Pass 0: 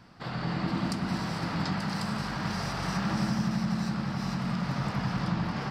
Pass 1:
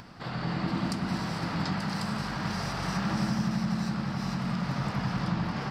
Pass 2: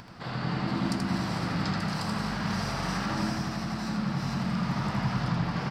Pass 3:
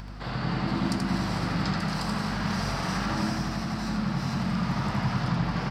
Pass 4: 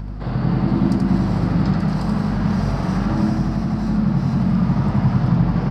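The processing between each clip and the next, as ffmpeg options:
-af "acompressor=mode=upward:threshold=-41dB:ratio=2.5"
-af "aecho=1:1:81:0.596"
-af "aeval=exprs='val(0)+0.00891*(sin(2*PI*50*n/s)+sin(2*PI*2*50*n/s)/2+sin(2*PI*3*50*n/s)/3+sin(2*PI*4*50*n/s)/4+sin(2*PI*5*50*n/s)/5)':c=same,volume=1.5dB"
-af "tiltshelf=f=920:g=8.5,volume=3dB"

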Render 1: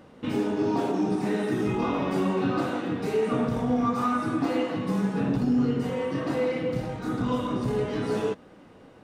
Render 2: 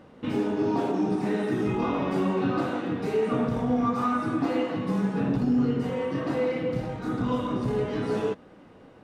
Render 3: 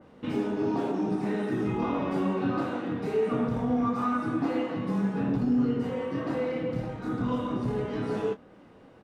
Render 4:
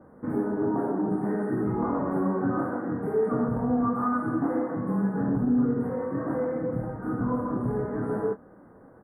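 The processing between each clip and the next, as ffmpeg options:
-af "highshelf=f=5.1k:g=-6.5"
-filter_complex "[0:a]asplit=2[a][b];[b]adelay=25,volume=-11.5dB[c];[a][c]amix=inputs=2:normalize=0,adynamicequalizer=threshold=0.00355:dfrequency=2500:dqfactor=0.7:tfrequency=2500:tqfactor=0.7:attack=5:release=100:ratio=0.375:range=1.5:mode=cutabove:tftype=highshelf,volume=-2.5dB"
-af "asuperstop=centerf=4200:order=12:qfactor=0.56,volume=1.5dB"

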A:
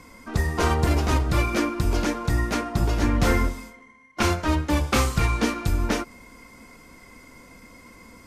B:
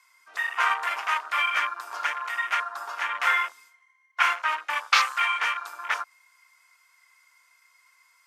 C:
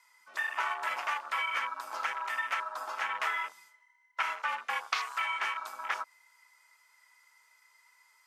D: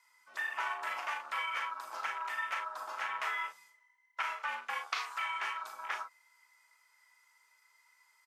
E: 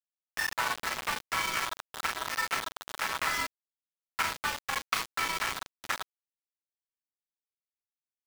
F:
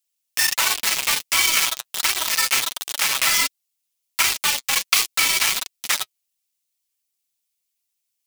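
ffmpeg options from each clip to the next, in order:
-af "afwtdn=0.0282,highpass=f=1.1k:w=0.5412,highpass=f=1.1k:w=1.3066,volume=7dB"
-af "acompressor=threshold=-25dB:ratio=12,afreqshift=-73,volume=-3dB"
-af "aecho=1:1:38|50:0.422|0.188,volume=-4.5dB"
-af "aeval=exprs='val(0)*gte(abs(val(0)),0.02)':c=same,volume=6.5dB"
-af "flanger=delay=2.5:depth=5.4:regen=31:speed=1.4:shape=sinusoidal,aexciter=amount=3.4:drive=5.9:freq=2.2k,volume=8dB"

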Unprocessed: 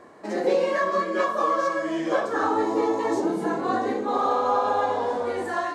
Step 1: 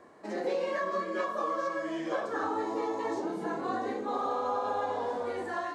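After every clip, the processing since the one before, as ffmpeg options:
-filter_complex "[0:a]acrossover=split=560|6200[a][b][c];[a]acompressor=threshold=-27dB:ratio=4[d];[b]acompressor=threshold=-24dB:ratio=4[e];[c]acompressor=threshold=-59dB:ratio=4[f];[d][e][f]amix=inputs=3:normalize=0,volume=-6.5dB"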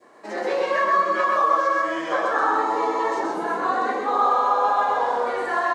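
-af "highpass=f=500:p=1,adynamicequalizer=threshold=0.00398:dfrequency=1200:dqfactor=0.77:tfrequency=1200:tqfactor=0.77:attack=5:release=100:ratio=0.375:range=3.5:mode=boostabove:tftype=bell,aecho=1:1:128:0.708,volume=6.5dB"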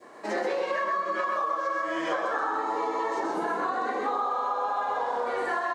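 -af "acompressor=threshold=-28dB:ratio=12,volume=3dB"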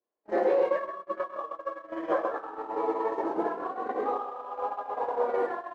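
-af "aeval=exprs='val(0)+0.5*0.0158*sgn(val(0))':c=same,bandpass=f=450:t=q:w=0.85:csg=0,agate=range=-53dB:threshold=-29dB:ratio=16:detection=peak,volume=4.5dB"

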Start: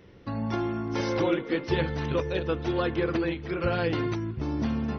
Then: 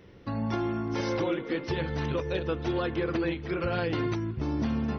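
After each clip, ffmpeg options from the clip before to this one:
-af "alimiter=limit=-19.5dB:level=0:latency=1:release=120"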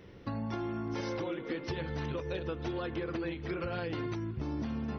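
-af "acompressor=threshold=-33dB:ratio=5"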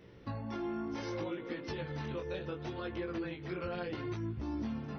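-af "flanger=delay=17:depth=5.9:speed=0.67"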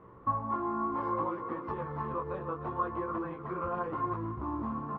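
-af "aresample=16000,acrusher=bits=5:mode=log:mix=0:aa=0.000001,aresample=44100,lowpass=f=1.1k:t=q:w=11,aecho=1:1:305:0.266"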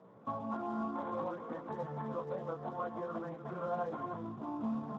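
-af "highpass=f=140:w=0.5412,highpass=f=140:w=1.3066,equalizer=f=220:t=q:w=4:g=4,equalizer=f=350:t=q:w=4:g=-8,equalizer=f=670:t=q:w=4:g=8,equalizer=f=1.1k:t=q:w=4:g=-9,lowpass=f=2.3k:w=0.5412,lowpass=f=2.3k:w=1.3066,volume=-2dB" -ar 32000 -c:a libspeex -b:a 15k

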